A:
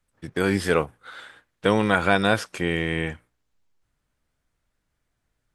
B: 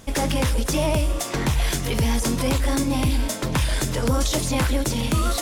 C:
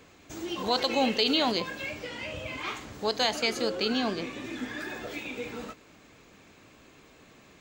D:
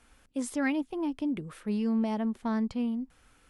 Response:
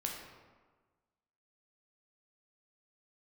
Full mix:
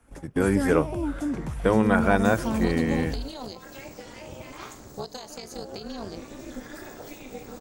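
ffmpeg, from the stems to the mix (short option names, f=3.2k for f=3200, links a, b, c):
-filter_complex "[0:a]volume=0dB[a];[1:a]aeval=exprs='val(0)+0.0316*(sin(2*PI*50*n/s)+sin(2*PI*2*50*n/s)/2+sin(2*PI*3*50*n/s)/3+sin(2*PI*4*50*n/s)/4+sin(2*PI*5*50*n/s)/5)':c=same,lowpass=8.6k,volume=-12dB[b];[2:a]highshelf=f=3.4k:t=q:w=1.5:g=8.5,acompressor=threshold=-27dB:ratio=10,tremolo=f=280:d=0.889,adelay=1950,volume=2.5dB[c];[3:a]volume=2dB,asplit=2[d][e];[e]apad=whole_len=238970[f];[b][f]sidechaingate=range=-33dB:threshold=-56dB:ratio=16:detection=peak[g];[a][g][c][d]amix=inputs=4:normalize=0,equalizer=f=3.8k:w=0.72:g=-12.5"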